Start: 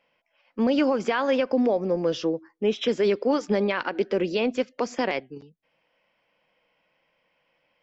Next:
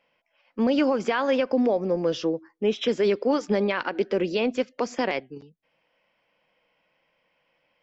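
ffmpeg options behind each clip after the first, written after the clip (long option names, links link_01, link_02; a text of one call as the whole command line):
ffmpeg -i in.wav -af anull out.wav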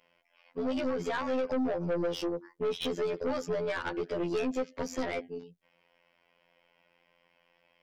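ffmpeg -i in.wav -af "acompressor=threshold=-24dB:ratio=6,afftfilt=real='hypot(re,im)*cos(PI*b)':imag='0':win_size=2048:overlap=0.75,aeval=exprs='(tanh(35.5*val(0)+0.2)-tanh(0.2))/35.5':channel_layout=same,volume=5dB" out.wav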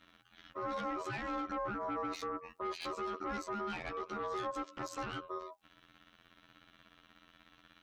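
ffmpeg -i in.wav -filter_complex "[0:a]asplit=2[link_01][link_02];[link_02]acompressor=threshold=-40dB:ratio=6,volume=-2dB[link_03];[link_01][link_03]amix=inputs=2:normalize=0,alimiter=level_in=10dB:limit=-24dB:level=0:latency=1:release=142,volume=-10dB,aeval=exprs='val(0)*sin(2*PI*810*n/s)':channel_layout=same,volume=3.5dB" out.wav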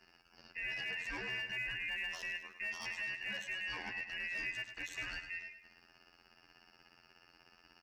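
ffmpeg -i in.wav -af "afftfilt=real='real(if(lt(b,272),68*(eq(floor(b/68),0)*1+eq(floor(b/68),1)*0+eq(floor(b/68),2)*3+eq(floor(b/68),3)*2)+mod(b,68),b),0)':imag='imag(if(lt(b,272),68*(eq(floor(b/68),0)*1+eq(floor(b/68),1)*0+eq(floor(b/68),2)*3+eq(floor(b/68),3)*2)+mod(b,68),b),0)':win_size=2048:overlap=0.75,asoftclip=type=hard:threshold=-31dB,aecho=1:1:104|208|312|416|520:0.316|0.149|0.0699|0.0328|0.0154,volume=-2dB" out.wav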